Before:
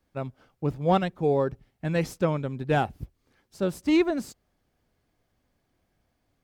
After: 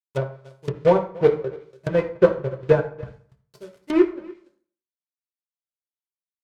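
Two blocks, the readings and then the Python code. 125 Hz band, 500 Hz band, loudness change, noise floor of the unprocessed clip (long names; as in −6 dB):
+0.5 dB, +7.5 dB, +5.5 dB, −75 dBFS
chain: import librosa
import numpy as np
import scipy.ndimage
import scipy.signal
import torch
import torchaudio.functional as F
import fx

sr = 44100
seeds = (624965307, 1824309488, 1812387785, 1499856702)

p1 = fx.bandpass_edges(x, sr, low_hz=160.0, high_hz=4000.0)
p2 = fx.high_shelf(p1, sr, hz=2100.0, db=-9.5)
p3 = p2 + 0.72 * np.pad(p2, (int(2.0 * sr / 1000.0), 0))[:len(p2)]
p4 = fx.transient(p3, sr, attack_db=8, sustain_db=-11)
p5 = fx.quant_companded(p4, sr, bits=4)
p6 = fx.step_gate(p5, sr, bpm=177, pattern='.xx.xx..x', floor_db=-24.0, edge_ms=4.5)
p7 = p6 + fx.echo_single(p6, sr, ms=288, db=-22.0, dry=0)
p8 = fx.rev_fdn(p7, sr, rt60_s=0.52, lf_ratio=1.0, hf_ratio=0.75, size_ms=46.0, drr_db=2.5)
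y = fx.env_lowpass_down(p8, sr, base_hz=1700.0, full_db=-23.0)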